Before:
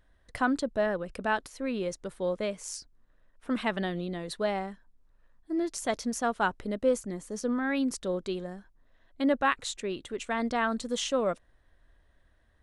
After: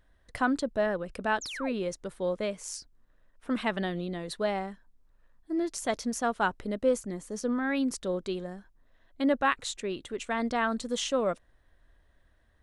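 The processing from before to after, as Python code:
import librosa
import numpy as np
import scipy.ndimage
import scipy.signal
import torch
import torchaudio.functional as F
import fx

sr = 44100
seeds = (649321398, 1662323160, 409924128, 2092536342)

y = fx.spec_paint(x, sr, seeds[0], shape='fall', start_s=1.41, length_s=0.32, low_hz=410.0, high_hz=7600.0, level_db=-39.0)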